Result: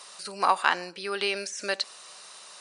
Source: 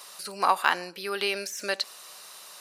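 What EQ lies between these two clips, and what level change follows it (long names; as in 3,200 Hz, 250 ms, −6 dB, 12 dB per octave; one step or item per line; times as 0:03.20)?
linear-phase brick-wall low-pass 10,000 Hz
0.0 dB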